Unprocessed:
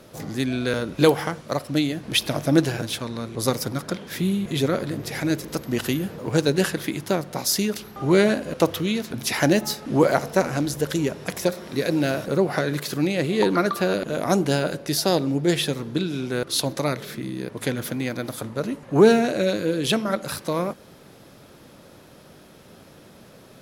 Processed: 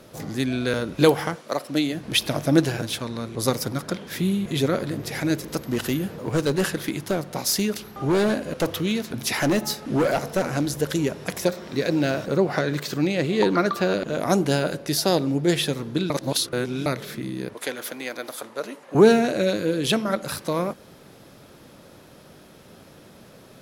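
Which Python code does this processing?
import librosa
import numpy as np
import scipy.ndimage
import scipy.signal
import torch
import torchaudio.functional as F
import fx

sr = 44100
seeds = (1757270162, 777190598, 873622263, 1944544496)

y = fx.highpass(x, sr, hz=fx.line((1.35, 350.0), (1.93, 160.0)), slope=12, at=(1.35, 1.93), fade=0.02)
y = fx.clip_hard(y, sr, threshold_db=-16.5, at=(5.71, 10.48), fade=0.02)
y = fx.peak_eq(y, sr, hz=11000.0, db=-15.0, octaves=0.28, at=(11.5, 14.2))
y = fx.highpass(y, sr, hz=460.0, slope=12, at=(17.54, 18.95))
y = fx.edit(y, sr, fx.reverse_span(start_s=16.1, length_s=0.76), tone=tone)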